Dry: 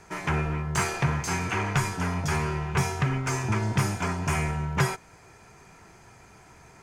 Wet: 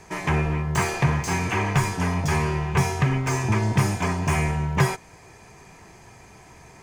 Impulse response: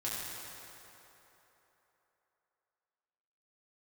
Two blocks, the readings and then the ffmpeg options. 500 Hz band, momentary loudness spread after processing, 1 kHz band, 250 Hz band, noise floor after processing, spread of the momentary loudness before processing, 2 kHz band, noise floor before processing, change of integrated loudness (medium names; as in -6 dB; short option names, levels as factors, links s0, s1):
+4.5 dB, 2 LU, +3.5 dB, +4.5 dB, -49 dBFS, 2 LU, +3.0 dB, -53 dBFS, +4.0 dB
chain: -filter_complex "[0:a]bandreject=f=1400:w=5.5,acrossover=split=2300[s0][s1];[s1]asoftclip=type=tanh:threshold=0.02[s2];[s0][s2]amix=inputs=2:normalize=0,volume=1.68"